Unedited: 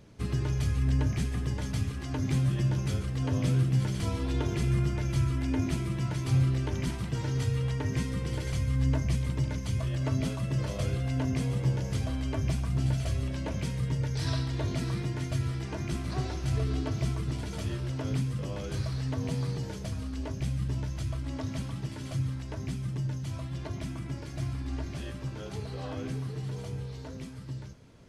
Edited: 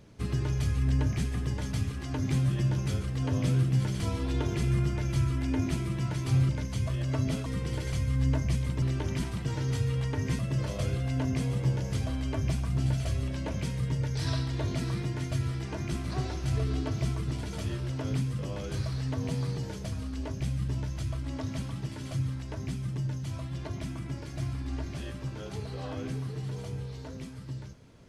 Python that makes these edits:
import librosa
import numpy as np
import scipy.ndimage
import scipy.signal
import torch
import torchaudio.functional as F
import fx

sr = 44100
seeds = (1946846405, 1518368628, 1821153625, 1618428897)

y = fx.edit(x, sr, fx.swap(start_s=6.49, length_s=1.57, other_s=9.42, other_length_s=0.97), tone=tone)